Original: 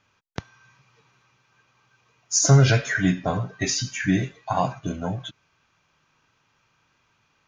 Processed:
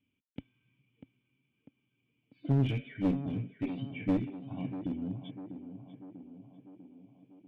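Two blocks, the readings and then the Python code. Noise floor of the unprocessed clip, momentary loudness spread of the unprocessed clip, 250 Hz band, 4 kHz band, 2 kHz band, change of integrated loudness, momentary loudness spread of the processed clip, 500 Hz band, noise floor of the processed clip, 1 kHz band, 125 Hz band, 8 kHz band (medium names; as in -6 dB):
-68 dBFS, 23 LU, -6.5 dB, -21.5 dB, -21.5 dB, -12.0 dB, 21 LU, -13.5 dB, -80 dBFS, -20.0 dB, -12.5 dB, under -40 dB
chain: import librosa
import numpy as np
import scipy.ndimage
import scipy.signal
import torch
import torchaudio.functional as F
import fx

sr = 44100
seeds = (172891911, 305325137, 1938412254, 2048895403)

y = fx.formant_cascade(x, sr, vowel='i')
y = fx.clip_asym(y, sr, top_db=-29.5, bottom_db=-18.0)
y = fx.echo_tape(y, sr, ms=645, feedback_pct=69, wet_db=-8.0, lp_hz=1300.0, drive_db=24.0, wow_cents=22)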